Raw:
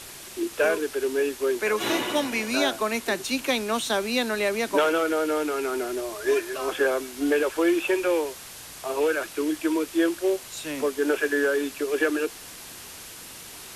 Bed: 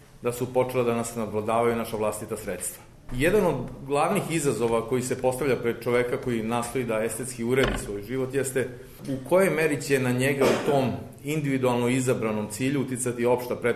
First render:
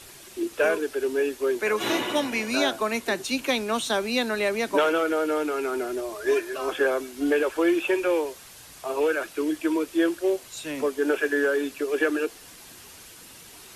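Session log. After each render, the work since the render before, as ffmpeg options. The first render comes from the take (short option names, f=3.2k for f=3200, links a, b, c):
-af "afftdn=nr=6:nf=-42"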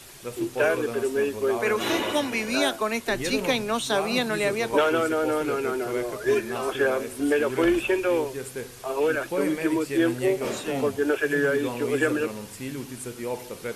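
-filter_complex "[1:a]volume=-8.5dB[a];[0:a][a]amix=inputs=2:normalize=0"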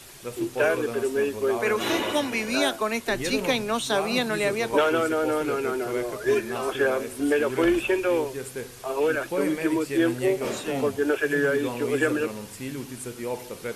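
-af anull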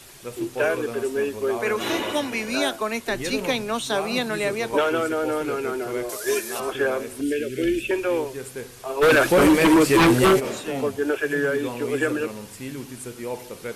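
-filter_complex "[0:a]asettb=1/sr,asplit=3[a][b][c];[a]atrim=end=6.094[d];[b]atrim=start=6.09:end=6.6,asetpts=PTS-STARTPTS,afade=t=in:d=0.004:c=qsin,afade=t=out:st=0.506:d=0.004:c=qsin,bass=f=250:g=-12,treble=f=4k:g=14[e];[c]atrim=start=6.596[f];[d][e]acrossfade=d=0.004:c1=hsin:c2=qsin[g];[g][f]acrossfade=d=0.004:c1=qsin:c2=hsin,asettb=1/sr,asplit=3[h][i][j];[h]atrim=end=7.214[k];[i]atrim=start=7.21:end=7.91,asetpts=PTS-STARTPTS,afade=t=in:d=0.004:c=qsin,afade=t=out:st=0.696:d=0.004:c=qsin,asuperstop=centerf=950:order=4:qfactor=0.6[l];[j]atrim=start=7.906[m];[k][l]acrossfade=d=0.004:c1=hsin:c2=qsin[n];[n][m]acrossfade=d=0.004:c1=qsin:c2=hsin,asplit=3[o][p][q];[o]afade=t=out:st=9.01:d=0.02[r];[p]aeval=exprs='0.266*sin(PI/2*3.16*val(0)/0.266)':c=same,afade=t=in:st=9.01:d=0.02,afade=t=out:st=10.39:d=0.02[s];[q]afade=t=in:st=10.39:d=0.02[t];[r][s][t]amix=inputs=3:normalize=0"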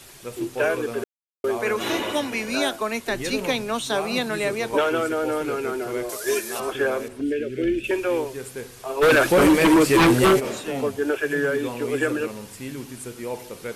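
-filter_complex "[0:a]asettb=1/sr,asplit=3[a][b][c];[a]atrim=end=7.084[d];[b]atrim=start=7.08:end=7.84,asetpts=PTS-STARTPTS,afade=t=in:d=0.004:c=qsin,afade=t=out:st=0.756:d=0.004:c=qsin,lowpass=f=1.9k:p=1[e];[c]atrim=start=7.836[f];[d][e]acrossfade=d=0.004:c1=hsin:c2=qsin[g];[g][f]acrossfade=d=0.004:c1=qsin:c2=hsin,asplit=3[h][i][j];[h]atrim=end=1.04,asetpts=PTS-STARTPTS,afade=t=out:st=1.036:d=0.004:c=hsin[k];[i]atrim=start=1.04:end=1.44,asetpts=PTS-STARTPTS,volume=0[l];[j]atrim=start=1.44,asetpts=PTS-STARTPTS,afade=t=in:d=0.004:c=hsin[m];[k][l][m]concat=n=3:v=0:a=1"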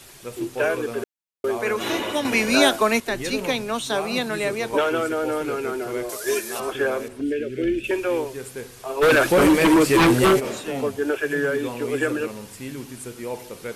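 -filter_complex "[0:a]asplit=3[a][b][c];[a]atrim=end=2.252[d];[b]atrim=start=2.248:end=3.002,asetpts=PTS-STARTPTS,volume=7dB[e];[c]atrim=start=2.998[f];[d][e]acrossfade=d=0.004:c1=hsin:c2=hsin[g];[g][f]acrossfade=d=0.004:c1=hsin:c2=hsin"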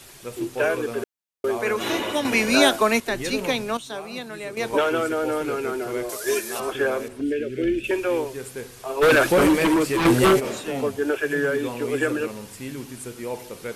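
-filter_complex "[0:a]asplit=4[a][b][c][d];[a]atrim=end=3.772[e];[b]atrim=start=3.768:end=4.572,asetpts=PTS-STARTPTS,volume=-9dB[f];[c]atrim=start=4.568:end=10.05,asetpts=PTS-STARTPTS,afade=t=out:st=4.652:d=0.83:silence=0.421697[g];[d]atrim=start=10.05,asetpts=PTS-STARTPTS,afade=t=in:d=0.004:c=hsin:silence=0.421697[h];[e][f]acrossfade=d=0.004:c1=hsin:c2=hsin[i];[g][h]concat=n=2:v=0:a=1[j];[i][j]acrossfade=d=0.004:c1=hsin:c2=hsin"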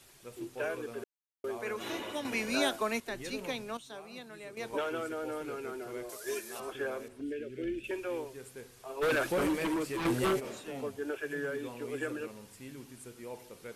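-af "volume=-13dB"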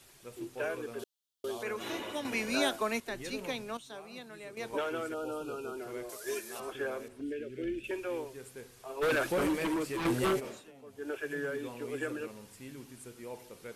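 -filter_complex "[0:a]asettb=1/sr,asplit=3[a][b][c];[a]atrim=end=0.994[d];[b]atrim=start=0.99:end=1.63,asetpts=PTS-STARTPTS,afade=t=in:d=0.004:c=qsin,afade=t=out:st=0.636:d=0.004:c=qsin,highshelf=f=2.7k:t=q:w=3:g=6.5[e];[c]atrim=start=1.626[f];[d][e]acrossfade=d=0.004:c1=hsin:c2=qsin[g];[g][f]acrossfade=d=0.004:c1=qsin:c2=hsin,asettb=1/sr,asplit=3[h][i][j];[h]atrim=end=5.144[k];[i]atrim=start=5.14:end=5.77,asetpts=PTS-STARTPTS,afade=t=in:d=0.004:c=qsin,afade=t=out:st=0.626:d=0.004:c=qsin,asuperstop=centerf=1900:order=20:qfactor=2.1[l];[j]atrim=start=5.766[m];[k][l]acrossfade=d=0.004:c1=hsin:c2=qsin[n];[n][m]acrossfade=d=0.004:c1=qsin:c2=hsin,asplit=3[o][p][q];[o]atrim=end=10.72,asetpts=PTS-STARTPTS,afade=t=out:st=10.43:d=0.29:silence=0.177828[r];[p]atrim=start=10.72:end=10.86,asetpts=PTS-STARTPTS,volume=-15dB[s];[q]atrim=start=10.86,asetpts=PTS-STARTPTS,afade=t=in:d=0.29:silence=0.177828[t];[r][s][t]concat=n=3:v=0:a=1"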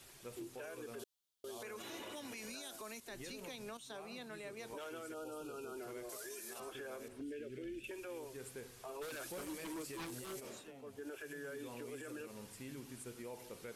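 -filter_complex "[0:a]acrossover=split=4400[a][b];[a]acompressor=threshold=-42dB:ratio=6[c];[c][b]amix=inputs=2:normalize=0,alimiter=level_in=14.5dB:limit=-24dB:level=0:latency=1:release=54,volume=-14.5dB"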